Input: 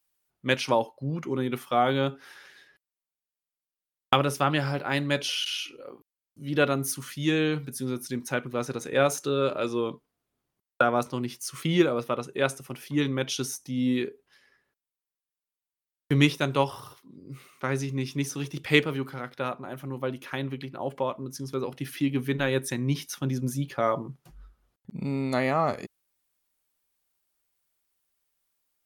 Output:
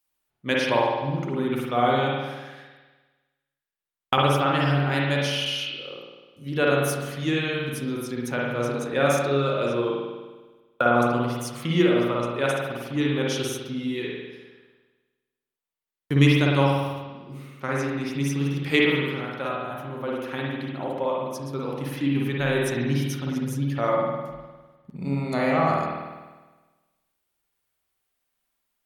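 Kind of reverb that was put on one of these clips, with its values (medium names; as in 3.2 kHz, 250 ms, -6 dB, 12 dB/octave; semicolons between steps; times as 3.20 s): spring tank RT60 1.3 s, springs 50 ms, chirp 25 ms, DRR -3.5 dB; trim -1.5 dB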